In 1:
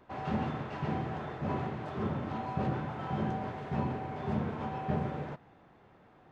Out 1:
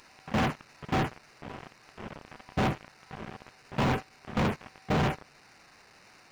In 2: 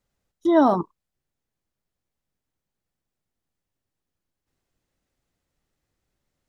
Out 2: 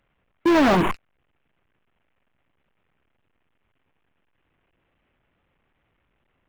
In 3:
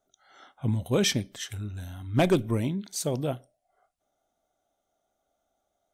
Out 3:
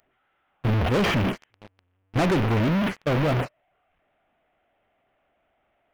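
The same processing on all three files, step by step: one-bit delta coder 16 kbps, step -28.5 dBFS; gate with hold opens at -21 dBFS; waveshaping leveller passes 5; trim -5 dB

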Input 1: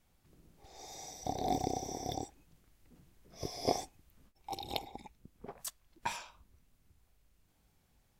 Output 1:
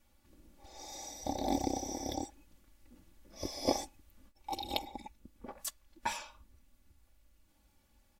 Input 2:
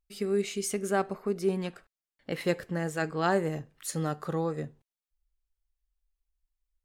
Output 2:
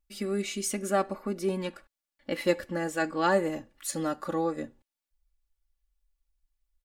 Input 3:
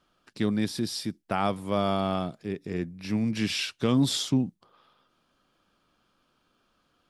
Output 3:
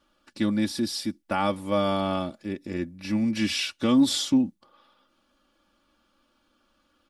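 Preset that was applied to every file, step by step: comb 3.5 ms, depth 79%

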